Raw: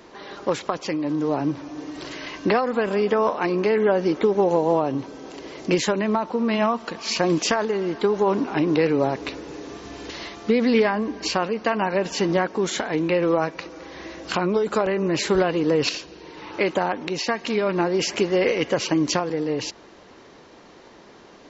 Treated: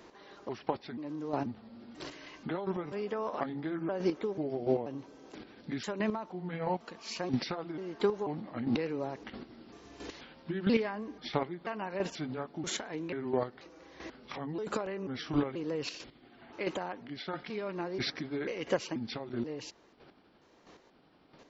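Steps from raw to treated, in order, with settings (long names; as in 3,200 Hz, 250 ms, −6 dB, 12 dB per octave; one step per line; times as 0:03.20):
pitch shifter gated in a rhythm −4.5 semitones, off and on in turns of 486 ms
square-wave tremolo 1.5 Hz, depth 60%, duty 15%
level −7 dB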